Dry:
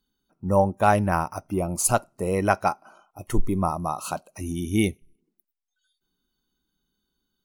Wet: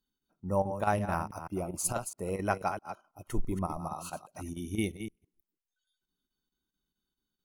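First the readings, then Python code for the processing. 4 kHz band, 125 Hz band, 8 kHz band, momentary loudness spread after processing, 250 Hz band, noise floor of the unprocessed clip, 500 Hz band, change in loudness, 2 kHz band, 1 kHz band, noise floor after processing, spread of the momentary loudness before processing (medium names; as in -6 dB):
-9.0 dB, -9.0 dB, -8.5 dB, 13 LU, -9.0 dB, -82 dBFS, -9.0 dB, -9.5 dB, -9.0 dB, -9.5 dB, under -85 dBFS, 12 LU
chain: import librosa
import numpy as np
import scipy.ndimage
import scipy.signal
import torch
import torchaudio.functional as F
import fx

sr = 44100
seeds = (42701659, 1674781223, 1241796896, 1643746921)

y = fx.reverse_delay(x, sr, ms=164, wet_db=-9.0)
y = fx.chopper(y, sr, hz=4.6, depth_pct=60, duty_pct=85)
y = F.gain(torch.from_numpy(y), -9.0).numpy()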